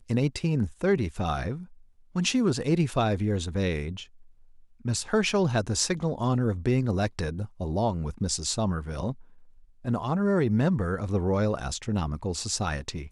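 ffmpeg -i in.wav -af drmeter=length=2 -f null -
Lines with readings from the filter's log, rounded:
Channel 1: DR: 9.7
Overall DR: 9.7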